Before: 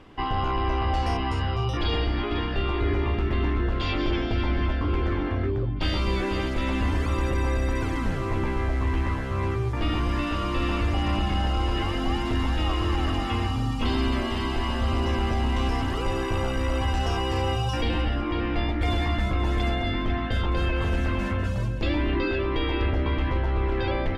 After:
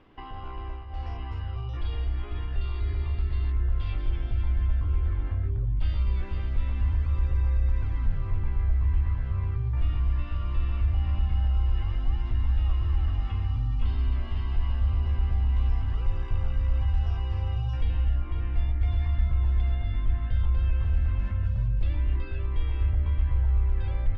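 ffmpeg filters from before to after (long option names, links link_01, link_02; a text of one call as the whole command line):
ffmpeg -i in.wav -filter_complex "[0:a]asettb=1/sr,asplit=3[link_01][link_02][link_03];[link_01]atrim=end=2.614[link_04];[link_02]atrim=start=2.61:end=3.52,asetpts=PTS-STARTPTS,afade=type=in:duration=0.004:curve=qsin,afade=type=out:start_time=0.906:duration=0.004:curve=qsin,lowpass=frequency=4500:width_type=q:width=5.7[link_05];[link_03]atrim=start=3.516[link_06];[link_04][link_05]acrossfade=duration=0.004:curve1=hsin:curve2=qsin[link_07];[link_07][link_06]acrossfade=duration=0.004:curve1=qsin:curve2=hsin,asettb=1/sr,asplit=3[link_08][link_09][link_10];[link_08]atrim=end=7.504[link_11];[link_09]atrim=start=7.5:end=11.57,asetpts=PTS-STARTPTS,afade=type=in:duration=0.004:curve=qsin,afade=type=out:start_time=4.066:duration=0.004:curve=qsin,lowpass=7000[link_12];[link_10]atrim=start=11.566[link_13];[link_11][link_12]acrossfade=duration=0.004:curve1=hsin:curve2=qsin[link_14];[link_14][link_13]acrossfade=duration=0.004:curve1=qsin:curve2=hsin,asplit=3[link_15][link_16][link_17];[link_15]atrim=end=0.85,asetpts=PTS-STARTPTS,afade=type=out:start_time=0.61:duration=0.24:silence=0.237137[link_18];[link_16]atrim=start=0.85:end=0.89,asetpts=PTS-STARTPTS,volume=-12.5dB[link_19];[link_17]atrim=start=0.89,asetpts=PTS-STARTPTS,afade=type=in:duration=0.24:silence=0.237137[link_20];[link_18][link_19][link_20]concat=n=3:v=0:a=1,alimiter=limit=-24dB:level=0:latency=1:release=466,asubboost=boost=11.5:cutoff=89,lowpass=3800,volume=-8dB" out.wav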